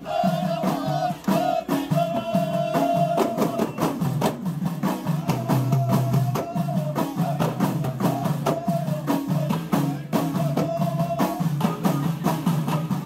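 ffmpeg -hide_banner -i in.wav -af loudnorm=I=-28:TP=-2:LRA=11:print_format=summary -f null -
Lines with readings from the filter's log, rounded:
Input Integrated:    -24.0 LUFS
Input True Peak:      -7.9 dBTP
Input LRA:             0.8 LU
Input Threshold:     -34.0 LUFS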